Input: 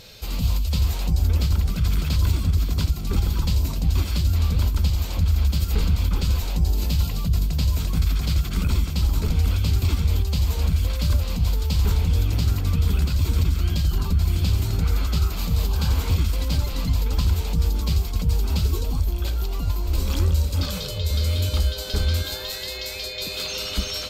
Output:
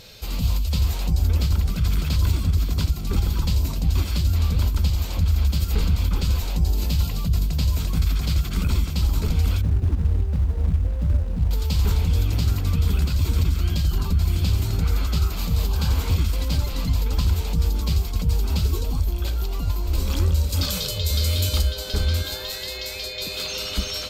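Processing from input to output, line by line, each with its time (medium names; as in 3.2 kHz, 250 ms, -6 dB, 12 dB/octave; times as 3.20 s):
9.61–11.51 s: median filter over 41 samples
20.49–21.62 s: treble shelf 3.4 kHz +8 dB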